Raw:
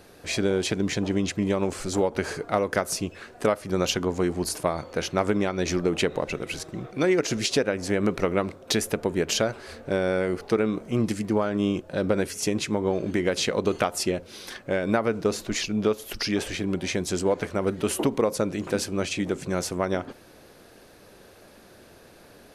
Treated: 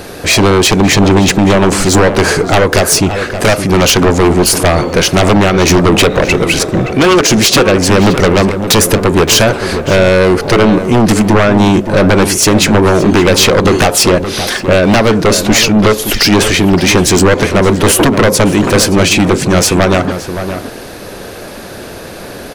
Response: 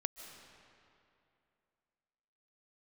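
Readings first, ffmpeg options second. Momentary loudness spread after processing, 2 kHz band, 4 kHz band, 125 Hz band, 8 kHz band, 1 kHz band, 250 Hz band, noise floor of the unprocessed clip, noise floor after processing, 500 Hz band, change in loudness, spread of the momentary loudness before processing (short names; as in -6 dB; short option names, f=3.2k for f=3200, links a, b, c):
8 LU, +19.0 dB, +19.5 dB, +20.0 dB, +20.0 dB, +18.5 dB, +17.0 dB, -51 dBFS, -27 dBFS, +15.5 dB, +17.5 dB, 5 LU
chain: -filter_complex "[0:a]aeval=exprs='0.447*sin(PI/2*5.01*val(0)/0.447)':c=same,acontrast=69,asplit=2[a][b];[b]adelay=571.4,volume=-9dB,highshelf=f=4k:g=-12.9[c];[a][c]amix=inputs=2:normalize=0,volume=-1dB"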